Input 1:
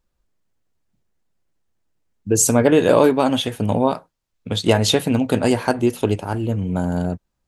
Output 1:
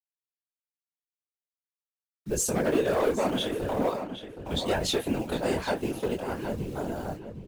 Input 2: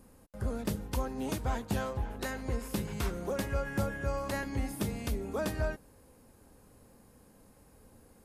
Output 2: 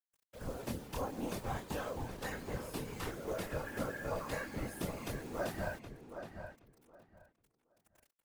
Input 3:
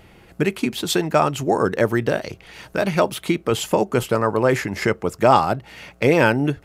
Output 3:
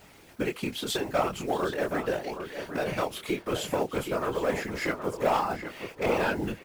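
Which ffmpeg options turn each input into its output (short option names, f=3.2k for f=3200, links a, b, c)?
-filter_complex "[0:a]bass=f=250:g=-6,treble=f=4k:g=-2,asplit=2[a][b];[b]acompressor=threshold=-28dB:ratio=10,volume=1dB[c];[a][c]amix=inputs=2:normalize=0,acrusher=bits=6:mode=log:mix=0:aa=0.000001,flanger=delay=19.5:depth=7.4:speed=0.44,asoftclip=type=hard:threshold=-12.5dB,acrusher=bits=7:mix=0:aa=0.000001,afftfilt=real='hypot(re,im)*cos(2*PI*random(0))':imag='hypot(re,im)*sin(2*PI*random(1))':win_size=512:overlap=0.75,asplit=2[d][e];[e]adelay=770,lowpass=f=2.7k:p=1,volume=-8dB,asplit=2[f][g];[g]adelay=770,lowpass=f=2.7k:p=1,volume=0.19,asplit=2[h][i];[i]adelay=770,lowpass=f=2.7k:p=1,volume=0.19[j];[d][f][h][j]amix=inputs=4:normalize=0,volume=-1.5dB"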